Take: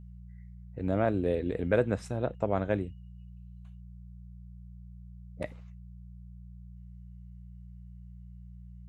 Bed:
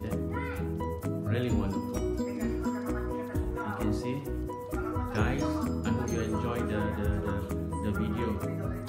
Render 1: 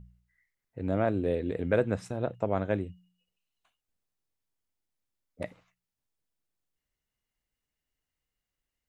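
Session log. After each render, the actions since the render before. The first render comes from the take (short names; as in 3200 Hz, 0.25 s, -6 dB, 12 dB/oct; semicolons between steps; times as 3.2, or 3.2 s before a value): de-hum 60 Hz, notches 3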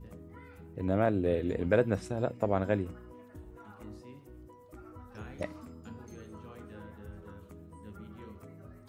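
add bed -17 dB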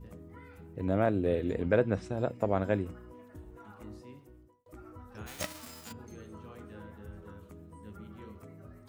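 1.62–2.12 air absorption 71 m; 4.12–4.66 fade out; 5.26–5.91 spectral whitening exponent 0.3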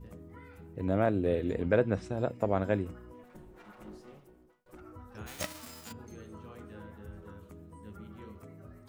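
3.23–4.81 minimum comb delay 5.5 ms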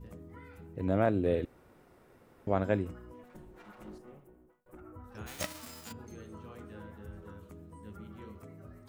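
1.45–2.47 room tone; 3.98–5.04 bell 4600 Hz -14.5 dB 1.4 oct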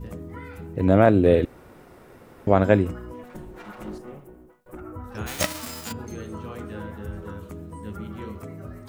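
gain +12 dB; limiter -3 dBFS, peak gain reduction 1 dB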